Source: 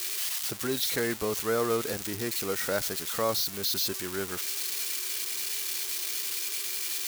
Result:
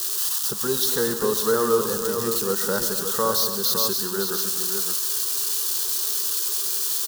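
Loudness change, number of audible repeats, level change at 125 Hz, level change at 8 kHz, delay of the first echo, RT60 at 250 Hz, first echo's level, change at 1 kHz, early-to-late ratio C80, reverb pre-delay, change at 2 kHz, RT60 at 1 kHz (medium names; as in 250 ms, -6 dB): +7.5 dB, 4, +4.0 dB, +8.0 dB, 135 ms, no reverb, -11.5 dB, +7.5 dB, no reverb, no reverb, +1.5 dB, no reverb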